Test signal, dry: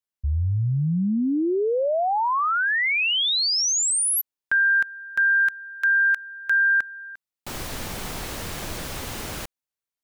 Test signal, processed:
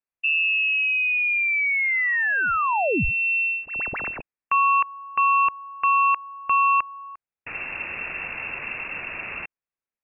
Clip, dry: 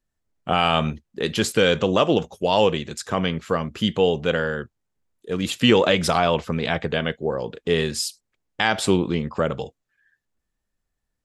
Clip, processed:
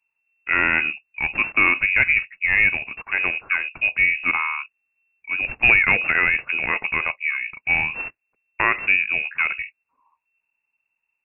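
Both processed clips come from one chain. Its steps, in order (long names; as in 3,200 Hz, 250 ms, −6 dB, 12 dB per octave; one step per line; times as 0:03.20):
stylus tracing distortion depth 0.14 ms
voice inversion scrambler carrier 2,700 Hz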